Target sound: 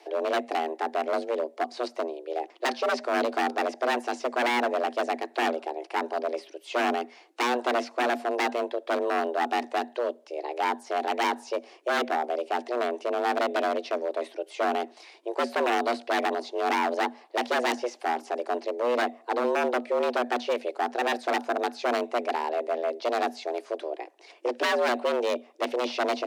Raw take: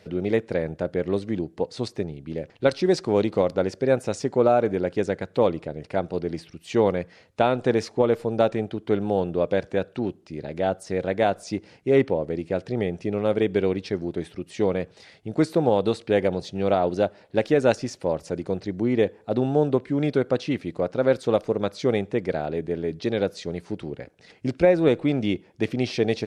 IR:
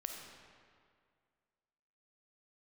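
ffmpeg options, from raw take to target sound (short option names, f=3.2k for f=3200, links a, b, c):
-filter_complex "[0:a]acrossover=split=4400[a][b];[b]acompressor=threshold=-51dB:ratio=4:attack=1:release=60[c];[a][c]amix=inputs=2:normalize=0,aeval=exprs='0.106*(abs(mod(val(0)/0.106+3,4)-2)-1)':c=same,afreqshift=240"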